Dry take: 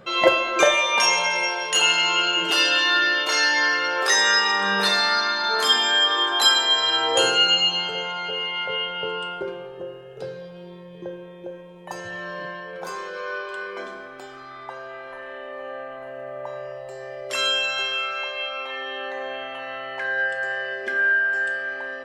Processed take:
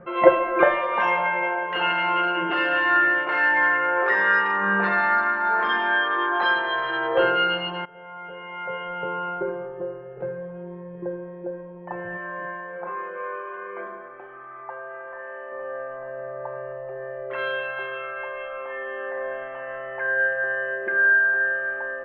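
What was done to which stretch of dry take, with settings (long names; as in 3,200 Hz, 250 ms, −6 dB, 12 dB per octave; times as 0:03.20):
0:07.85–0:09.17: fade in, from −21 dB
0:12.17–0:15.52: low-shelf EQ 290 Hz −10 dB
whole clip: adaptive Wiener filter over 9 samples; inverse Chebyshev low-pass filter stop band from 10,000 Hz, stop band 80 dB; comb filter 5.7 ms, depth 60%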